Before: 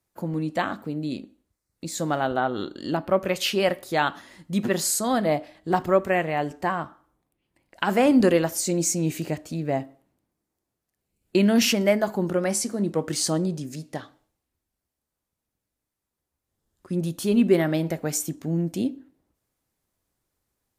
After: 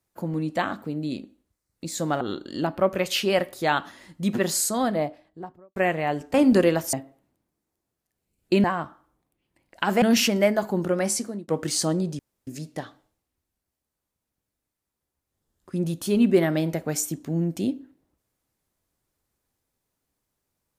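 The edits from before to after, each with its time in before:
2.21–2.51 cut
4.93–6.06 studio fade out
6.64–8.02 move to 11.47
8.61–9.76 cut
12.63–12.93 fade out
13.64 insert room tone 0.28 s

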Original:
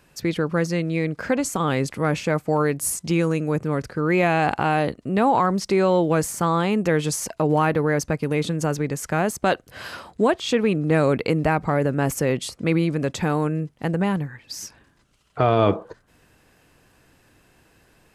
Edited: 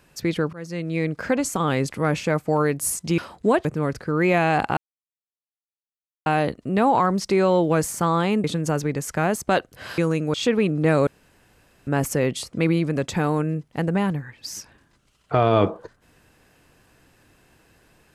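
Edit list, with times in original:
0.53–1.03 fade in, from -23 dB
3.18–3.54 swap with 9.93–10.4
4.66 insert silence 1.49 s
6.84–8.39 cut
11.13–11.93 room tone

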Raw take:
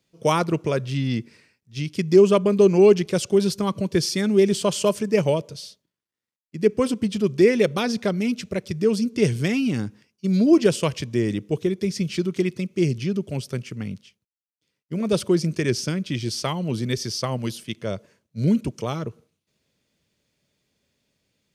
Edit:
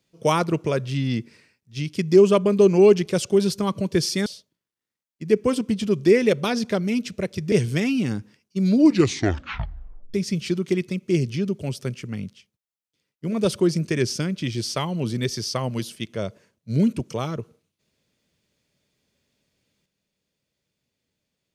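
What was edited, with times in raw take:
4.26–5.59 cut
8.85–9.2 cut
10.44 tape stop 1.38 s

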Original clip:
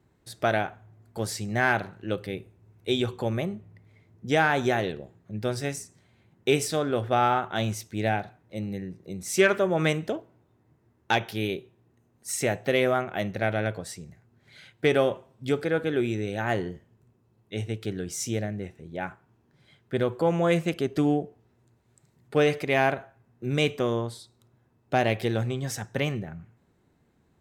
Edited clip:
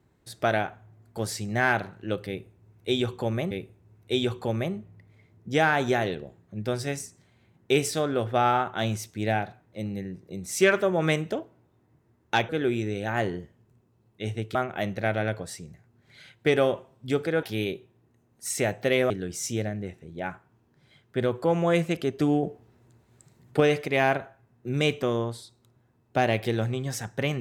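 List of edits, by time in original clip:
2.28–3.51 loop, 2 plays
11.26–12.93 swap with 15.81–17.87
21.2–22.37 gain +5.5 dB

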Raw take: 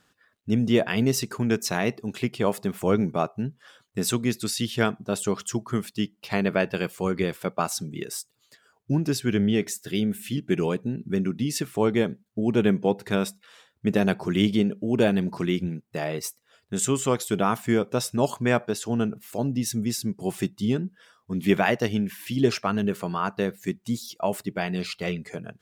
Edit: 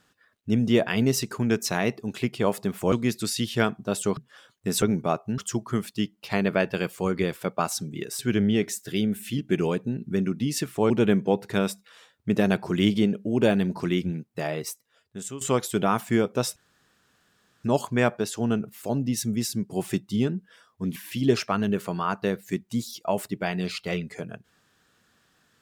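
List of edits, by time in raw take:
2.92–3.48 swap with 4.13–5.38
8.19–9.18 cut
11.89–12.47 cut
16.02–16.98 fade out, to -15.5 dB
18.13 insert room tone 1.08 s
21.45–22.11 cut

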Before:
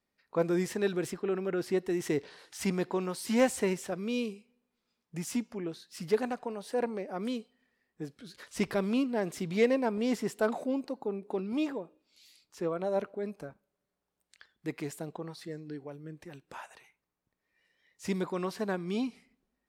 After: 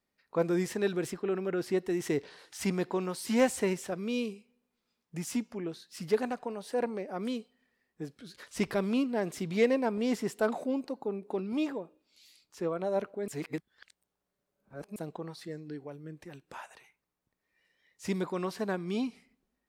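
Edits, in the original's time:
13.28–14.96 reverse

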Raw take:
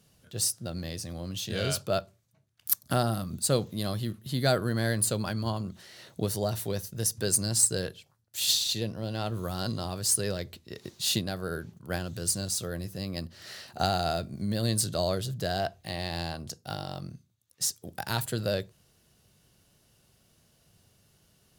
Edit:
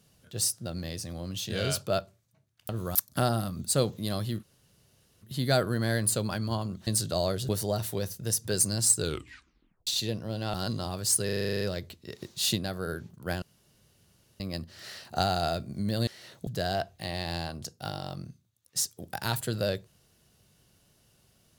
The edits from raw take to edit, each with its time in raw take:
4.17 insert room tone 0.79 s
5.82–6.22 swap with 14.7–15.32
7.7 tape stop 0.90 s
9.27–9.53 move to 2.69
10.24 stutter 0.04 s, 10 plays
12.05–13.03 room tone

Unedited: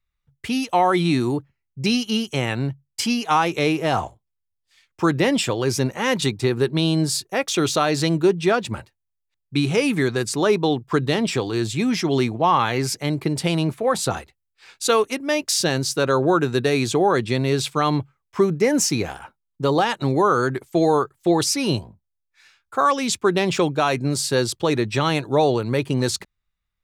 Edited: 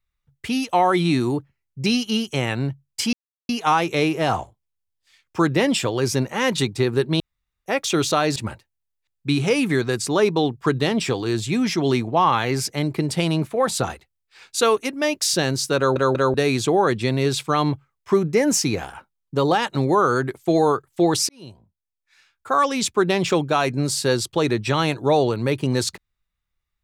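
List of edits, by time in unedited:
3.13 insert silence 0.36 s
6.84–7.3 room tone
8–8.63 cut
16.04 stutter in place 0.19 s, 3 plays
21.56–22.93 fade in

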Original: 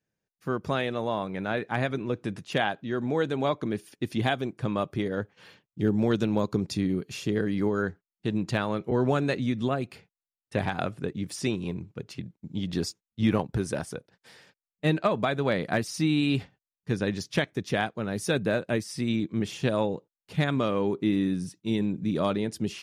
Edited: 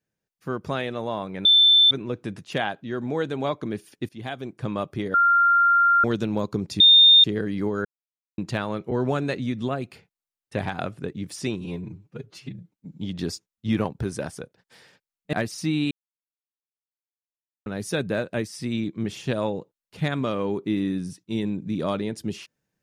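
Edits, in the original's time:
1.45–1.91 bleep 3540 Hz -12 dBFS
4.09–4.64 fade in, from -17.5 dB
5.14–6.04 bleep 1390 Hz -14.5 dBFS
6.8–7.24 bleep 3640 Hz -9.5 dBFS
7.85–8.38 mute
11.61–12.53 stretch 1.5×
14.87–15.69 cut
16.27–18.02 mute

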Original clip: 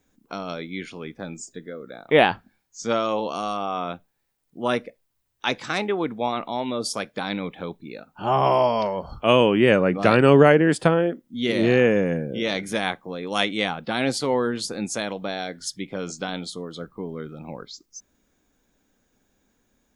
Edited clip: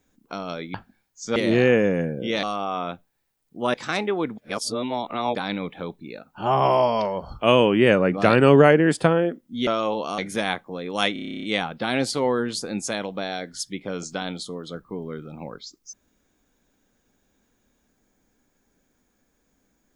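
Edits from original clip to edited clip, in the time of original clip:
0.74–2.31 cut
2.93–3.44 swap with 11.48–12.55
4.75–5.55 cut
6.19–7.16 reverse
13.5 stutter 0.03 s, 11 plays

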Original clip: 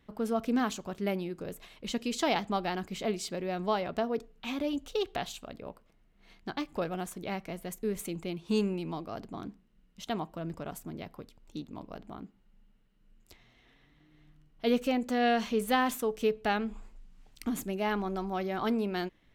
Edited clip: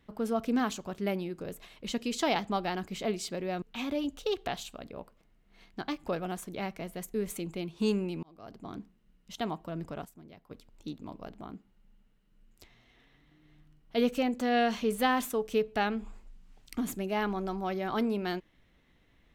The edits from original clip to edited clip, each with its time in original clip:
3.62–4.31 cut
8.92–9.49 fade in
10.74–11.2 gain -11 dB

